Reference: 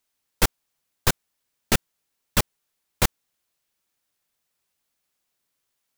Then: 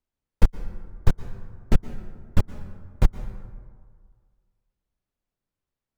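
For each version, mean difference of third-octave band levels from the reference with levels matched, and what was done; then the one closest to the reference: 9.5 dB: tilt -4 dB/oct; compressor 1.5:1, threshold -4 dBFS, peak gain reduction 4 dB; plate-style reverb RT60 1.8 s, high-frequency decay 0.45×, pre-delay 0.105 s, DRR 12.5 dB; gain -8 dB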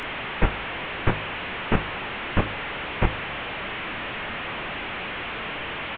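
14.0 dB: delta modulation 16 kbps, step -26.5 dBFS; doubler 27 ms -13.5 dB; de-hum 51.79 Hz, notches 33; gain +2 dB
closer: first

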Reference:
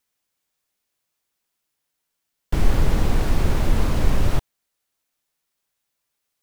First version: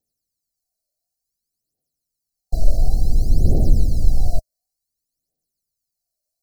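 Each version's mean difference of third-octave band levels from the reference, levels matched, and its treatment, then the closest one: 12.5 dB: phaser 0.56 Hz, delay 1.7 ms, feedback 75%; brick-wall FIR band-stop 790–3900 Hz; gain -6.5 dB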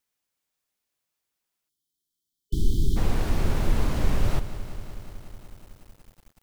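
3.5 dB: spectral delete 1.69–2.97, 410–3000 Hz; lo-fi delay 0.185 s, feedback 80%, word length 7-bit, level -14 dB; gain -4.5 dB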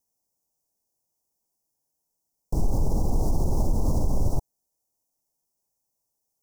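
8.0 dB: Chebyshev band-stop 880–5600 Hz, order 3; limiter -14.5 dBFS, peak gain reduction 9.5 dB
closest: second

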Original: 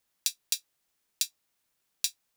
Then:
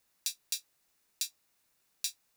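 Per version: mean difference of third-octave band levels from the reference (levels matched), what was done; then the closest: 2.5 dB: notch 3200 Hz, Q 13; limiter -15.5 dBFS, peak gain reduction 11.5 dB; gain +3.5 dB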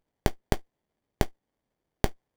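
22.0 dB: high shelf 7200 Hz -9 dB; running maximum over 33 samples; gain +4.5 dB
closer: first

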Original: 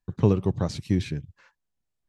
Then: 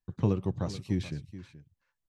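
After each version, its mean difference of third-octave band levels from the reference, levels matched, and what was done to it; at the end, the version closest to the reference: 1.5 dB: notch 420 Hz, Q 12; on a send: echo 0.428 s -15 dB; on the sum: gain -6 dB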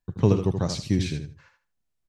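4.0 dB: dynamic EQ 5800 Hz, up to +7 dB, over -56 dBFS, Q 0.92; on a send: feedback echo 78 ms, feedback 21%, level -7.5 dB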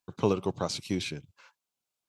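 5.5 dB: HPF 840 Hz 6 dB/oct; bell 1800 Hz -14 dB 0.22 oct; gain +5 dB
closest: first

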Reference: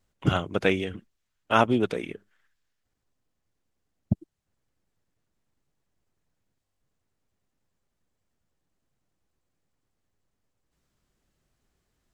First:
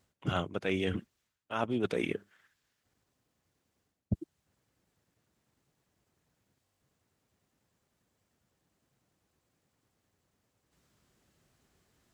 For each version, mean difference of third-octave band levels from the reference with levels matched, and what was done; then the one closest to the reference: 4.5 dB: HPF 71 Hz; reverse; compressor 16:1, threshold -33 dBFS, peak gain reduction 20.5 dB; reverse; gain +5.5 dB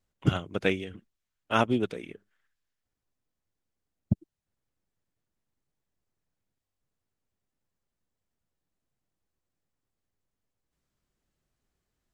2.0 dB: dynamic EQ 900 Hz, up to -4 dB, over -36 dBFS, Q 0.79; upward expander 1.5:1, over -31 dBFS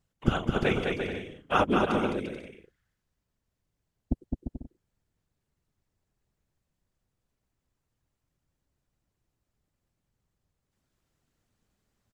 6.5 dB: whisperiser; bouncing-ball echo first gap 0.21 s, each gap 0.65×, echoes 5; gain -4 dB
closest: second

